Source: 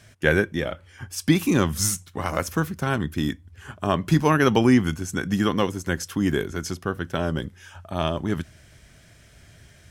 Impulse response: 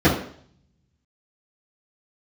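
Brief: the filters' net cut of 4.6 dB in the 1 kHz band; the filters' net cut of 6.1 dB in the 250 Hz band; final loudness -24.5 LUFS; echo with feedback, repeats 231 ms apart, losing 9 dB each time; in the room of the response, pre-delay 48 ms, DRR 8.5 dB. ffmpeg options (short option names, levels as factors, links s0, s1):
-filter_complex "[0:a]equalizer=f=250:t=o:g=-8,equalizer=f=1000:t=o:g=-5.5,aecho=1:1:231|462|693|924:0.355|0.124|0.0435|0.0152,asplit=2[s0][s1];[1:a]atrim=start_sample=2205,adelay=48[s2];[s1][s2]afir=irnorm=-1:irlink=0,volume=0.0316[s3];[s0][s3]amix=inputs=2:normalize=0,volume=0.944"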